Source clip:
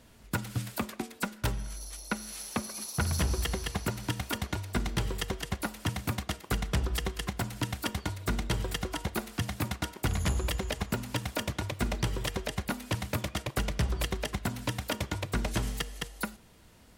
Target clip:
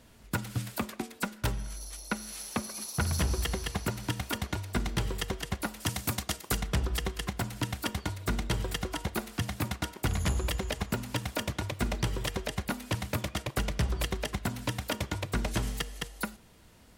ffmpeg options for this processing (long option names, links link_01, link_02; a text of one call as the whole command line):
ffmpeg -i in.wav -filter_complex "[0:a]asettb=1/sr,asplit=3[link_01][link_02][link_03];[link_01]atrim=end=5.804[link_04];[link_02]atrim=start=5.8:end=6.62,asetpts=PTS-STARTPTS,afade=type=in:duration=0.004:curve=qsin,afade=type=out:start_time=0.816:duration=0.004:curve=qsin,bass=frequency=250:gain=-2,treble=frequency=4000:gain=8[link_05];[link_03]atrim=start=6.616[link_06];[link_04][link_05]acrossfade=duration=0.004:curve1=hsin:curve2=qsin[link_07];[link_07][link_06]acrossfade=duration=0.004:curve1=qsin:curve2=hsin" out.wav